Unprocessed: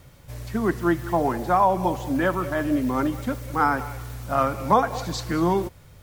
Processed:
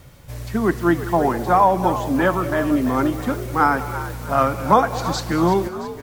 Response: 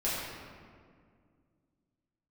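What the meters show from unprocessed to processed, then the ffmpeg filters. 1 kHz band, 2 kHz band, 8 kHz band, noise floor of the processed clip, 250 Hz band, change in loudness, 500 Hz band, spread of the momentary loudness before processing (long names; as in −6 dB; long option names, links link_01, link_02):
+4.5 dB, +4.5 dB, +4.5 dB, −39 dBFS, +4.0 dB, +4.0 dB, +4.5 dB, 10 LU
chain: -filter_complex "[0:a]asplit=6[link_01][link_02][link_03][link_04][link_05][link_06];[link_02]adelay=336,afreqshift=58,volume=-13dB[link_07];[link_03]adelay=672,afreqshift=116,volume=-18.8dB[link_08];[link_04]adelay=1008,afreqshift=174,volume=-24.7dB[link_09];[link_05]adelay=1344,afreqshift=232,volume=-30.5dB[link_10];[link_06]adelay=1680,afreqshift=290,volume=-36.4dB[link_11];[link_01][link_07][link_08][link_09][link_10][link_11]amix=inputs=6:normalize=0,volume=4dB"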